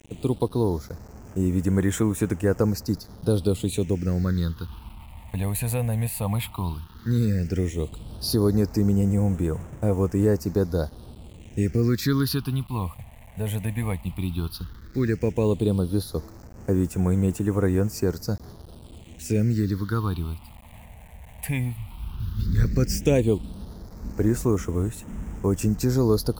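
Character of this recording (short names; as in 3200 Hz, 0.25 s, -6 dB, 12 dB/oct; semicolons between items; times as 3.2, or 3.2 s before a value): a quantiser's noise floor 8-bit, dither none; phasing stages 6, 0.13 Hz, lowest notch 350–4300 Hz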